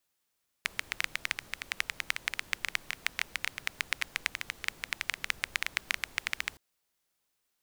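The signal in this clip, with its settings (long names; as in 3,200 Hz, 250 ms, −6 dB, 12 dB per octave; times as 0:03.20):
rain-like ticks over hiss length 5.92 s, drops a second 11, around 2,100 Hz, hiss −17 dB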